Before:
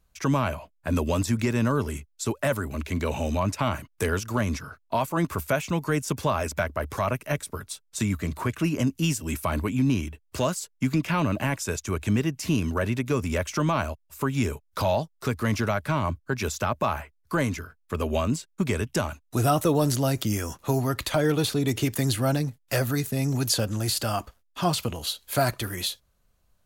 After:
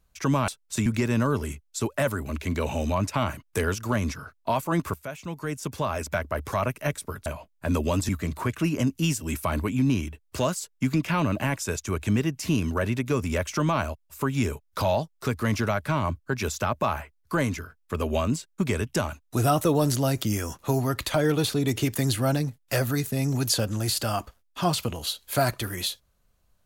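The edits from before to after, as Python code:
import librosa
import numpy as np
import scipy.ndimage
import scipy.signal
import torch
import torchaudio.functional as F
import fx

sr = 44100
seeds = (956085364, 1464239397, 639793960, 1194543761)

y = fx.edit(x, sr, fx.swap(start_s=0.48, length_s=0.83, other_s=7.71, other_length_s=0.38),
    fx.fade_in_from(start_s=5.39, length_s=1.41, floor_db=-14.5), tone=tone)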